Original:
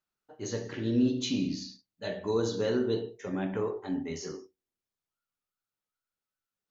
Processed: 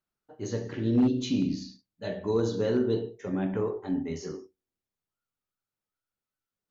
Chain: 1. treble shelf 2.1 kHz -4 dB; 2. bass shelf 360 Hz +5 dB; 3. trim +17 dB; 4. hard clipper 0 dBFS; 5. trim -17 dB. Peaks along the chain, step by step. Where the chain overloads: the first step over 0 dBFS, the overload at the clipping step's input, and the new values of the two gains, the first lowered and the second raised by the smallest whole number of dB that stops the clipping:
-16.0 dBFS, -13.0 dBFS, +4.0 dBFS, 0.0 dBFS, -17.0 dBFS; step 3, 4.0 dB; step 3 +13 dB, step 5 -13 dB

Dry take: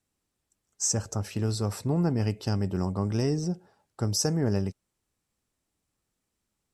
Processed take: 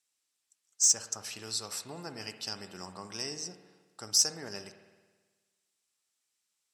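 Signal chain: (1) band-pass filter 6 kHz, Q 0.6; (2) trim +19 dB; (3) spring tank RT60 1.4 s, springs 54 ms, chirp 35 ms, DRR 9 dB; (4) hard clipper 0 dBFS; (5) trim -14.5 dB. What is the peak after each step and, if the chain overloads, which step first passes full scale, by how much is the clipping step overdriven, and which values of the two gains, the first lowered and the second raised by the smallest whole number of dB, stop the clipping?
-15.0 dBFS, +4.0 dBFS, +4.0 dBFS, 0.0 dBFS, -14.5 dBFS; step 2, 4.0 dB; step 2 +15 dB, step 5 -10.5 dB

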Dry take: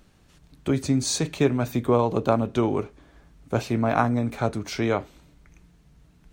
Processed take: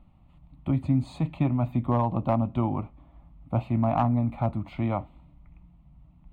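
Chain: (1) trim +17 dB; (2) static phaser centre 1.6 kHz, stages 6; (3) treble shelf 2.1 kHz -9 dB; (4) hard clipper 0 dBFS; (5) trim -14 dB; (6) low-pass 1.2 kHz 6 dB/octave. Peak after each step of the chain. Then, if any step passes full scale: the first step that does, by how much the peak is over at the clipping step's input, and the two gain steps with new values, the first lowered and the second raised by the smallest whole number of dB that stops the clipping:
+11.5 dBFS, +8.0 dBFS, +6.0 dBFS, 0.0 dBFS, -14.0 dBFS, -14.0 dBFS; step 1, 6.0 dB; step 1 +11 dB, step 5 -8 dB

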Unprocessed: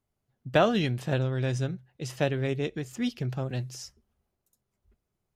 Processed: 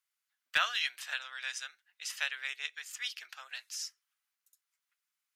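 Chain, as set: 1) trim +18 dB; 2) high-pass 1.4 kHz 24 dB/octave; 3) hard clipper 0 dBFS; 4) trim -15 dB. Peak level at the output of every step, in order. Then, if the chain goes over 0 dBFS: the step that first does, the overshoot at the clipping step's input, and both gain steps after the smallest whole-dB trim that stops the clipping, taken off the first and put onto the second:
+7.5 dBFS, +4.5 dBFS, 0.0 dBFS, -15.0 dBFS; step 1, 4.5 dB; step 1 +13 dB, step 4 -10 dB

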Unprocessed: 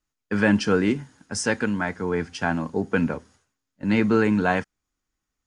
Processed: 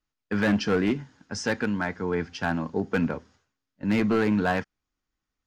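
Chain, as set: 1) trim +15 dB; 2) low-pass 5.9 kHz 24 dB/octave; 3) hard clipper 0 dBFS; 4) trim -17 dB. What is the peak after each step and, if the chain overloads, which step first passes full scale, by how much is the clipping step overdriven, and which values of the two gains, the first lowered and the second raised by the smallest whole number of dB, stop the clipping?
+9.0 dBFS, +9.0 dBFS, 0.0 dBFS, -17.0 dBFS; step 1, 9.0 dB; step 1 +6 dB, step 4 -8 dB

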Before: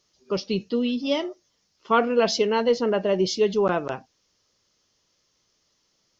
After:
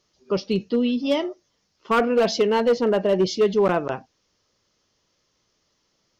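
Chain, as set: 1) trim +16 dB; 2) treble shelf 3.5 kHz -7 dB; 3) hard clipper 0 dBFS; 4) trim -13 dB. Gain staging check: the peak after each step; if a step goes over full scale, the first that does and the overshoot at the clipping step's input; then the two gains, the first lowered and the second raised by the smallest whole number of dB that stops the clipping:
+9.0 dBFS, +8.5 dBFS, 0.0 dBFS, -13.0 dBFS; step 1, 8.5 dB; step 1 +7 dB, step 4 -4 dB

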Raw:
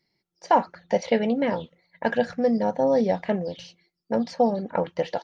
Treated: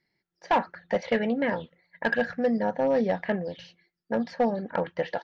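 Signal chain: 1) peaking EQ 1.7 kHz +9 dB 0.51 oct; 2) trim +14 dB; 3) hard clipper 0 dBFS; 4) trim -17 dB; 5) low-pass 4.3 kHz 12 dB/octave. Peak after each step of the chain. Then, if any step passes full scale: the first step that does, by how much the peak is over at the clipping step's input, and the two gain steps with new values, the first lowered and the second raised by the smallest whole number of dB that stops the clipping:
-6.0 dBFS, +8.0 dBFS, 0.0 dBFS, -17.0 dBFS, -16.5 dBFS; step 2, 8.0 dB; step 2 +6 dB, step 4 -9 dB

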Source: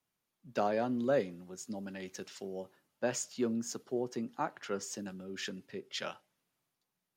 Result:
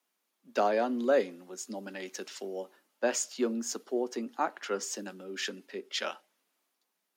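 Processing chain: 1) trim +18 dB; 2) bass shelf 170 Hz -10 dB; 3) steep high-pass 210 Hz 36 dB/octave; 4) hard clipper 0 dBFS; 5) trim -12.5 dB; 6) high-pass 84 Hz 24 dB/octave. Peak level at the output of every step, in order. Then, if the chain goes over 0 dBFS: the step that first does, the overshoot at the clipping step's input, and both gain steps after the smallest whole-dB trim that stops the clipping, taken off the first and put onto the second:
-0.5 dBFS, -1.5 dBFS, -1.5 dBFS, -1.5 dBFS, -14.0 dBFS, -14.5 dBFS; nothing clips

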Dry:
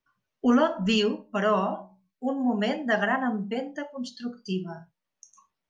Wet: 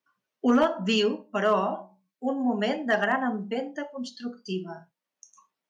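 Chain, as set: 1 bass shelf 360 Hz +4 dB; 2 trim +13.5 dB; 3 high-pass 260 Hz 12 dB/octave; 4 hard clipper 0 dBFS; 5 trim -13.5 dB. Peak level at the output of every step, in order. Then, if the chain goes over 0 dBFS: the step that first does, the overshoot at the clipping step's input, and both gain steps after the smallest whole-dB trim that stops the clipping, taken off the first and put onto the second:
-9.5 dBFS, +4.0 dBFS, +4.0 dBFS, 0.0 dBFS, -13.5 dBFS; step 2, 4.0 dB; step 2 +9.5 dB, step 5 -9.5 dB

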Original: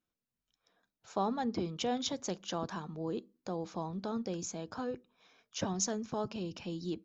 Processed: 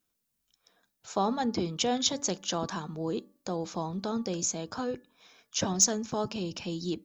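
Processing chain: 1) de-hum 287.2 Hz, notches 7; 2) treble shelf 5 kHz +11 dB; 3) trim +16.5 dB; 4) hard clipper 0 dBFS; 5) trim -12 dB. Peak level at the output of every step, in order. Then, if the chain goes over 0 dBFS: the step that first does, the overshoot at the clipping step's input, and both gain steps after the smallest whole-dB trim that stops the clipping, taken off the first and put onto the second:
-19.5 dBFS, -12.5 dBFS, +4.0 dBFS, 0.0 dBFS, -12.0 dBFS; step 3, 4.0 dB; step 3 +12.5 dB, step 5 -8 dB

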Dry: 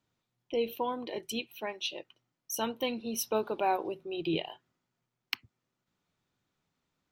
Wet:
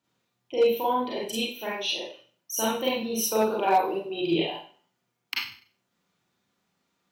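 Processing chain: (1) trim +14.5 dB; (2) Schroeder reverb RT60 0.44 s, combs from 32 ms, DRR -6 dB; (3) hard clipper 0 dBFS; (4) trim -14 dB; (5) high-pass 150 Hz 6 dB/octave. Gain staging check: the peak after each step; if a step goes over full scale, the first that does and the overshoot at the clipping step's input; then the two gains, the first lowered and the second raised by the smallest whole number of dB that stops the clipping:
+4.5 dBFS, +5.0 dBFS, 0.0 dBFS, -14.0 dBFS, -12.5 dBFS; step 1, 5.0 dB; step 1 +9.5 dB, step 4 -9 dB

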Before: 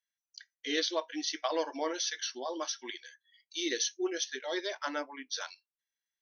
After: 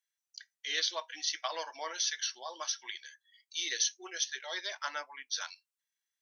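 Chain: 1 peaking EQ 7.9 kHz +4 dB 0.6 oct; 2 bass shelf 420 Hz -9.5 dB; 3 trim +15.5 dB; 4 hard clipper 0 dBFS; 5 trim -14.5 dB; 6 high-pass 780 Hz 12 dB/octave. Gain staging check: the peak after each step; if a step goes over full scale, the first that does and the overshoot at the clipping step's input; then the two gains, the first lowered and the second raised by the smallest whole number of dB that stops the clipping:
-17.0 dBFS, -17.0 dBFS, -1.5 dBFS, -1.5 dBFS, -16.0 dBFS, -16.0 dBFS; nothing clips

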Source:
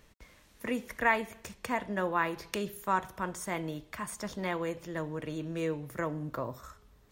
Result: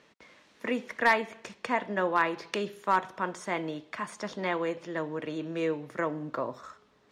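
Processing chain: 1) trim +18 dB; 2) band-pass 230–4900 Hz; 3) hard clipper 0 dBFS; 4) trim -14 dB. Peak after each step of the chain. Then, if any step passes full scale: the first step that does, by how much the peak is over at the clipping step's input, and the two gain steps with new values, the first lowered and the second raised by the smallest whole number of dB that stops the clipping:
+6.0 dBFS, +5.0 dBFS, 0.0 dBFS, -14.0 dBFS; step 1, 5.0 dB; step 1 +13 dB, step 4 -9 dB

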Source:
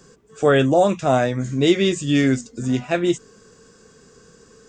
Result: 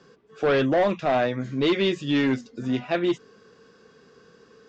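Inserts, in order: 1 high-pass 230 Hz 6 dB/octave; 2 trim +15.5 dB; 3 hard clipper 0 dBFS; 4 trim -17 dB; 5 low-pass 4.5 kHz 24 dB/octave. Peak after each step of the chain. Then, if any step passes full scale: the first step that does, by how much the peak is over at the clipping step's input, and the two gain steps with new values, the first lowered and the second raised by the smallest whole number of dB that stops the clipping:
-5.5 dBFS, +10.0 dBFS, 0.0 dBFS, -17.0 dBFS, -15.0 dBFS; step 2, 10.0 dB; step 2 +5.5 dB, step 4 -7 dB

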